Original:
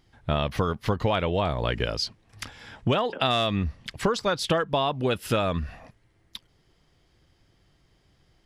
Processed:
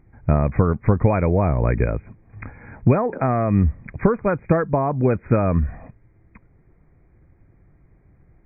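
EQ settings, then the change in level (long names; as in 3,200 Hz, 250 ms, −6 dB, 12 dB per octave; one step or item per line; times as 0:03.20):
linear-phase brick-wall low-pass 2,500 Hz
low-shelf EQ 470 Hz +11 dB
0.0 dB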